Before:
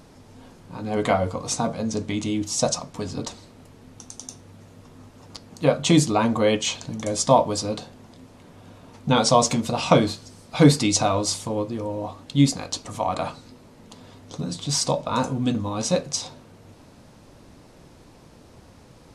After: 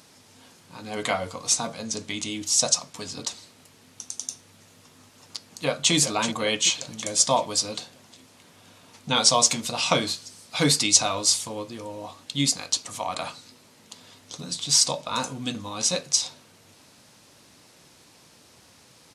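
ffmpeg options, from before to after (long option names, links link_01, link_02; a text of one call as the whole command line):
ffmpeg -i in.wav -filter_complex "[0:a]asplit=2[link_01][link_02];[link_02]afade=type=in:start_time=5.46:duration=0.01,afade=type=out:start_time=5.93:duration=0.01,aecho=0:1:380|760|1140|1520|1900|2280:0.334965|0.184231|0.101327|0.0557299|0.0306514|0.0168583[link_03];[link_01][link_03]amix=inputs=2:normalize=0,highpass=92,tiltshelf=frequency=1400:gain=-8,volume=-1.5dB" out.wav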